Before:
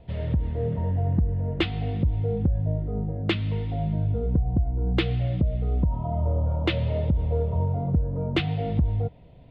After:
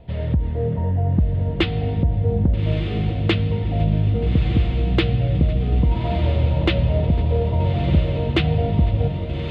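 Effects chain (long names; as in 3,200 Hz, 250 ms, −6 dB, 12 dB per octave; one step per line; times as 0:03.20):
feedback delay with all-pass diffusion 1,261 ms, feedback 55%, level −6.5 dB
level +4.5 dB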